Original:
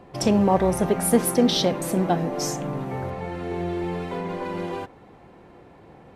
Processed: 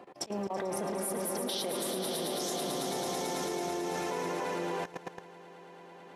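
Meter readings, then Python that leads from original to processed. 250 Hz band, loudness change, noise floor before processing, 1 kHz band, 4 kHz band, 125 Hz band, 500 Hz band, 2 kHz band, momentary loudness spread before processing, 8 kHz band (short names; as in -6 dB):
-14.0 dB, -10.0 dB, -50 dBFS, -8.0 dB, -6.5 dB, -17.0 dB, -9.5 dB, -5.5 dB, 12 LU, -6.0 dB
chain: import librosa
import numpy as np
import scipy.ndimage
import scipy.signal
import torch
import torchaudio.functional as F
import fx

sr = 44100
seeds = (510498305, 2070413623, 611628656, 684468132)

y = scipy.signal.sosfilt(scipy.signal.butter(2, 310.0, 'highpass', fs=sr, output='sos'), x)
y = fx.auto_swell(y, sr, attack_ms=163.0)
y = fx.echo_swell(y, sr, ms=110, loudest=5, wet_db=-10)
y = fx.level_steps(y, sr, step_db=17)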